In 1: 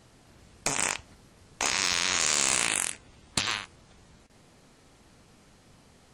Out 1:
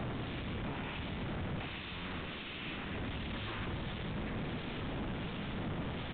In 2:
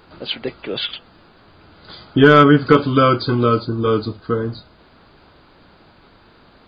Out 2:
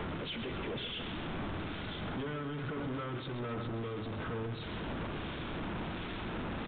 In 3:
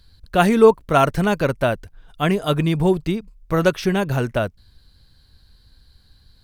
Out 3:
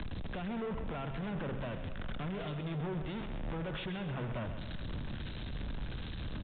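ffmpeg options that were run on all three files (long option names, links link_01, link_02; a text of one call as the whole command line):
ffmpeg -i in.wav -filter_complex "[0:a]aeval=exprs='val(0)+0.5*0.133*sgn(val(0))':channel_layout=same,bandreject=frequency=133.6:width_type=h:width=4,bandreject=frequency=267.2:width_type=h:width=4,bandreject=frequency=400.8:width_type=h:width=4,bandreject=frequency=534.4:width_type=h:width=4,bandreject=frequency=668:width_type=h:width=4,bandreject=frequency=801.6:width_type=h:width=4,bandreject=frequency=935.2:width_type=h:width=4,bandreject=frequency=1068.8:width_type=h:width=4,bandreject=frequency=1202.4:width_type=h:width=4,bandreject=frequency=1336:width_type=h:width=4,bandreject=frequency=1469.6:width_type=h:width=4,bandreject=frequency=1603.2:width_type=h:width=4,bandreject=frequency=1736.8:width_type=h:width=4,bandreject=frequency=1870.4:width_type=h:width=4,bandreject=frequency=2004:width_type=h:width=4,bandreject=frequency=2137.6:width_type=h:width=4,bandreject=frequency=2271.2:width_type=h:width=4,bandreject=frequency=2404.8:width_type=h:width=4,bandreject=frequency=2538.4:width_type=h:width=4,bandreject=frequency=2672:width_type=h:width=4,bandreject=frequency=2805.6:width_type=h:width=4,bandreject=frequency=2939.2:width_type=h:width=4,bandreject=frequency=3072.8:width_type=h:width=4,bandreject=frequency=3206.4:width_type=h:width=4,bandreject=frequency=3340:width_type=h:width=4,bandreject=frequency=3473.6:width_type=h:width=4,bandreject=frequency=3607.2:width_type=h:width=4,bandreject=frequency=3740.8:width_type=h:width=4,bandreject=frequency=3874.4:width_type=h:width=4,alimiter=limit=-10.5dB:level=0:latency=1:release=25,acrossover=split=140|320[link_01][link_02][link_03];[link_01]acompressor=threshold=-34dB:ratio=4[link_04];[link_02]acompressor=threshold=-31dB:ratio=4[link_05];[link_03]acompressor=threshold=-32dB:ratio=4[link_06];[link_04][link_05][link_06]amix=inputs=3:normalize=0,acrossover=split=2000[link_07][link_08];[link_07]aeval=exprs='val(0)*(1-0.5/2+0.5/2*cos(2*PI*1.4*n/s))':channel_layout=same[link_09];[link_08]aeval=exprs='val(0)*(1-0.5/2-0.5/2*cos(2*PI*1.4*n/s))':channel_layout=same[link_10];[link_09][link_10]amix=inputs=2:normalize=0,aresample=16000,asoftclip=type=tanh:threshold=-33dB,aresample=44100,aecho=1:1:131|262|393|524|655|786|917:0.316|0.18|0.103|0.0586|0.0334|0.019|0.0108,aresample=8000,aresample=44100,volume=-2.5dB" out.wav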